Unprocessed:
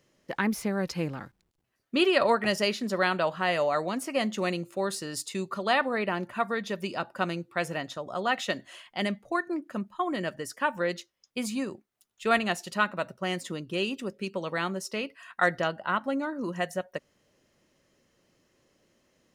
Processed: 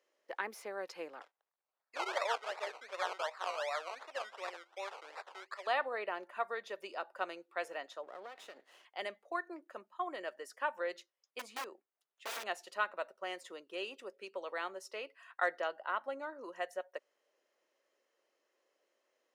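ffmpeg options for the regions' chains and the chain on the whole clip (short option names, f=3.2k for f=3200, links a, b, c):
-filter_complex "[0:a]asettb=1/sr,asplit=3[a][b][c];[a]atrim=end=1.214[d];[b]atrim=start=1.21:end=5.67,asetpts=PTS-STARTPTS,afade=t=in:d=0.004:c=qsin,afade=t=out:st=4.456:d=0.004:c=qsin,acrusher=samples=20:mix=1:aa=0.000001:lfo=1:lforange=12:lforate=2.7,highpass=700,lowpass=6k[e];[c]atrim=start=5.666[f];[d][e]acrossfade=d=0.004:c1=hsin:c2=qsin[g];[g][f]acrossfade=d=0.004:c1=qsin:c2=hsin,asettb=1/sr,asplit=3[h][i][j];[h]atrim=end=8.034[k];[i]atrim=start=8.03:end=8.85,asetpts=PTS-STARTPTS,afade=t=in:d=0.004:c=qsin,afade=t=out:st=0.816:d=0.004:c=qsin,acompressor=threshold=-33dB:ratio=10:attack=3.2:release=140:knee=1:detection=peak,aeval=exprs='max(val(0),0)':c=same,lowshelf=f=300:g=10.5[l];[j]atrim=start=8.846[m];[k][l]acrossfade=d=0.004:c1=hsin:c2=qsin[n];[n][m]acrossfade=d=0.004:c1=qsin:c2=hsin,asettb=1/sr,asplit=3[o][p][q];[o]atrim=end=11.394[r];[p]atrim=start=11.39:end=12.44,asetpts=PTS-STARTPTS,afade=t=in:d=0.004:c=qsin,afade=t=out:st=1.046:d=0.004:c=qsin,highshelf=f=5.8k:g=-10.5,aeval=exprs='(mod(18.8*val(0)+1,2)-1)/18.8':c=same[s];[q]atrim=start=12.436[t];[r][s]acrossfade=d=0.004:c1=hsin:c2=qsin[u];[u][t]acrossfade=d=0.004:c1=qsin:c2=hsin,highpass=f=430:w=0.5412,highpass=f=430:w=1.3066,highshelf=f=3.1k:g=-8,volume=-7dB"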